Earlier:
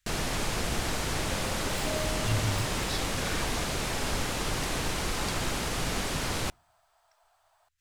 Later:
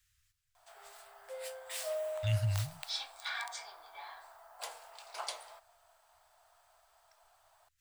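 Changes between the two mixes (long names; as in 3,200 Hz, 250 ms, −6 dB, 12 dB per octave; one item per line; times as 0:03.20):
first sound: muted
master: add high-shelf EQ 8,200 Hz +5.5 dB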